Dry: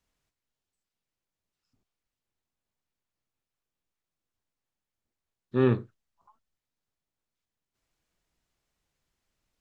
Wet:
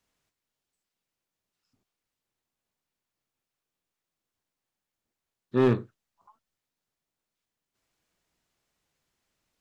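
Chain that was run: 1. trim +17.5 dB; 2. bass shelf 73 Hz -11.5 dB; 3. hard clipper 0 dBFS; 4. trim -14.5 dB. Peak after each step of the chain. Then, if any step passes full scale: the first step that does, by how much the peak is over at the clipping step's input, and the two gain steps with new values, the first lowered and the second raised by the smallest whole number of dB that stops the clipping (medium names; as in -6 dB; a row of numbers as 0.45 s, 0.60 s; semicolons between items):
+7.0 dBFS, +5.5 dBFS, 0.0 dBFS, -14.5 dBFS; step 1, 5.5 dB; step 1 +11.5 dB, step 4 -8.5 dB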